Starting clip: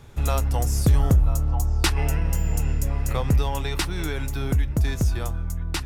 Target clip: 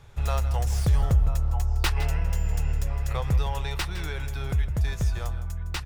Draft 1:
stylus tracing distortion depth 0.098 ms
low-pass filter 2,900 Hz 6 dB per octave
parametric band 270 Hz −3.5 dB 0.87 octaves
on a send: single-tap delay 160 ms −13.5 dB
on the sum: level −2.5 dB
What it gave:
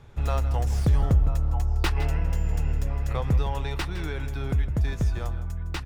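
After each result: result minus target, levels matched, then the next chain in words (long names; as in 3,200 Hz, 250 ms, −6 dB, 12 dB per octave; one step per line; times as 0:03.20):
8,000 Hz band −5.5 dB; 250 Hz band +4.0 dB
stylus tracing distortion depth 0.098 ms
low-pass filter 6,800 Hz 6 dB per octave
parametric band 270 Hz −3.5 dB 0.87 octaves
on a send: single-tap delay 160 ms −13.5 dB
on the sum: level −2.5 dB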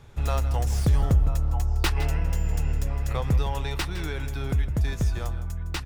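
250 Hz band +4.0 dB
stylus tracing distortion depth 0.098 ms
low-pass filter 6,800 Hz 6 dB per octave
parametric band 270 Hz −13 dB 0.87 octaves
on a send: single-tap delay 160 ms −13.5 dB
on the sum: level −2.5 dB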